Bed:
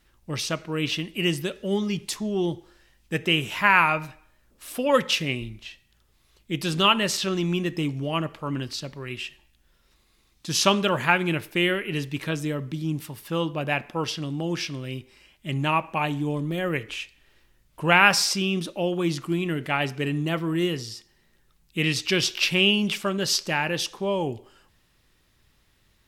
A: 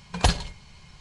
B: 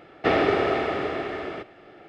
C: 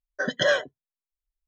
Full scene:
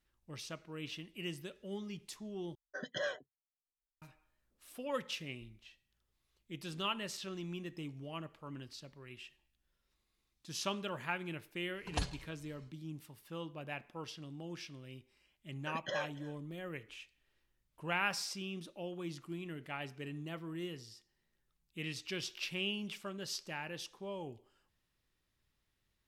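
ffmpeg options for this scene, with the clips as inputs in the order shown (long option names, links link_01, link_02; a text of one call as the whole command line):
ffmpeg -i bed.wav -i cue0.wav -i cue1.wav -i cue2.wav -filter_complex "[3:a]asplit=2[link_01][link_02];[0:a]volume=-17.5dB[link_03];[link_02]aecho=1:1:286:0.106[link_04];[link_03]asplit=2[link_05][link_06];[link_05]atrim=end=2.554[link_07];[link_01]atrim=end=1.47,asetpts=PTS-STARTPTS,volume=-16dB[link_08];[link_06]atrim=start=4.016[link_09];[1:a]atrim=end=1,asetpts=PTS-STARTPTS,volume=-15.5dB,afade=type=in:duration=0.1,afade=type=out:start_time=0.9:duration=0.1,adelay=11730[link_10];[link_04]atrim=end=1.47,asetpts=PTS-STARTPTS,volume=-17dB,afade=type=in:duration=0.004:curve=hsin,afade=type=out:start_time=1.466:duration=0.004:curve=hsin,adelay=15470[link_11];[link_07][link_08]acrossfade=duration=0.004:curve1=hsin:curve2=hsin[link_12];[link_12][link_09]acrossfade=duration=0.004:curve1=hsin:curve2=hsin[link_13];[link_13][link_10][link_11]amix=inputs=3:normalize=0" out.wav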